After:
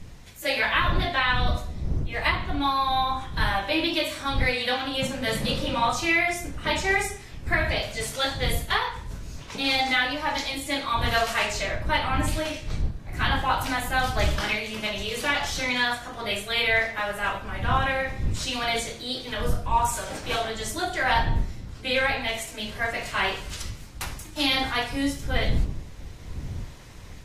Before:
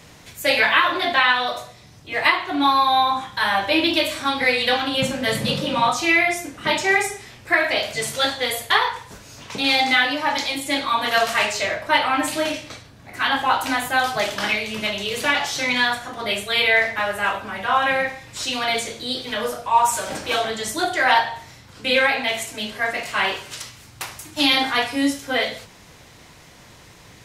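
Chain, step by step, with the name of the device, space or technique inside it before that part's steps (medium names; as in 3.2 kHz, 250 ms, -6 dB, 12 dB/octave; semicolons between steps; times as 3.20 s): smartphone video outdoors (wind noise 81 Hz -25 dBFS; level rider gain up to 4 dB; trim -8 dB; AAC 48 kbps 32 kHz)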